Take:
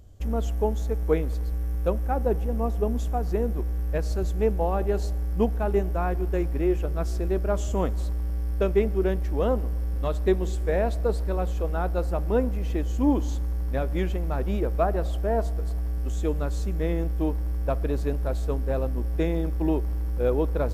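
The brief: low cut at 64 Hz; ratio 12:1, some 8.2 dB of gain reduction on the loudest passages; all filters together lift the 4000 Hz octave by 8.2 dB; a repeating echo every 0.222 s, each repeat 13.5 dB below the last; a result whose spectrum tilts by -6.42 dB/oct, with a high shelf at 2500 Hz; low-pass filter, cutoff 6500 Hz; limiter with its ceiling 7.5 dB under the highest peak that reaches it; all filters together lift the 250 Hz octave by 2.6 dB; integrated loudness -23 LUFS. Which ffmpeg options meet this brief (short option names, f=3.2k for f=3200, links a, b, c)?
-af "highpass=64,lowpass=6.5k,equalizer=f=250:t=o:g=3.5,highshelf=f=2.5k:g=5.5,equalizer=f=4k:t=o:g=6,acompressor=threshold=-23dB:ratio=12,alimiter=limit=-22.5dB:level=0:latency=1,aecho=1:1:222|444:0.211|0.0444,volume=9.5dB"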